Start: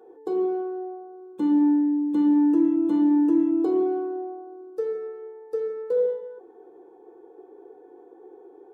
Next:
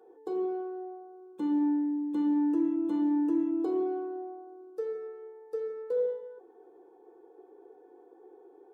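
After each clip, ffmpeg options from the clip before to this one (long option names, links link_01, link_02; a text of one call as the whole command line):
ffmpeg -i in.wav -af "lowshelf=frequency=240:gain=-6.5,volume=-5dB" out.wav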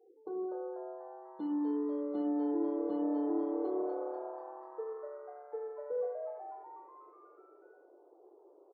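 ffmpeg -i in.wav -filter_complex "[0:a]afftfilt=real='re*gte(hypot(re,im),0.00447)':imag='im*gte(hypot(re,im),0.00447)':win_size=1024:overlap=0.75,asplit=8[link_01][link_02][link_03][link_04][link_05][link_06][link_07][link_08];[link_02]adelay=245,afreqshift=140,volume=-7dB[link_09];[link_03]adelay=490,afreqshift=280,volume=-12dB[link_10];[link_04]adelay=735,afreqshift=420,volume=-17.1dB[link_11];[link_05]adelay=980,afreqshift=560,volume=-22.1dB[link_12];[link_06]adelay=1225,afreqshift=700,volume=-27.1dB[link_13];[link_07]adelay=1470,afreqshift=840,volume=-32.2dB[link_14];[link_08]adelay=1715,afreqshift=980,volume=-37.2dB[link_15];[link_01][link_09][link_10][link_11][link_12][link_13][link_14][link_15]amix=inputs=8:normalize=0,volume=-6.5dB" out.wav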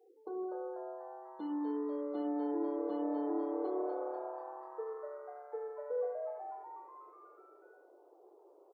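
ffmpeg -i in.wav -af "highpass=frequency=550:poles=1,volume=3dB" out.wav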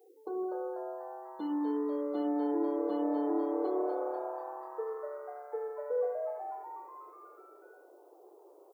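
ffmpeg -i in.wav -af "crystalizer=i=1.5:c=0,volume=4dB" out.wav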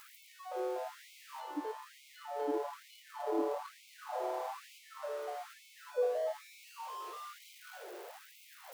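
ffmpeg -i in.wav -af "aeval=exprs='val(0)+0.5*0.00668*sgn(val(0))':channel_layout=same,afftfilt=real='re*gte(b*sr/1024,300*pow(2100/300,0.5+0.5*sin(2*PI*1.1*pts/sr)))':imag='im*gte(b*sr/1024,300*pow(2100/300,0.5+0.5*sin(2*PI*1.1*pts/sr)))':win_size=1024:overlap=0.75" out.wav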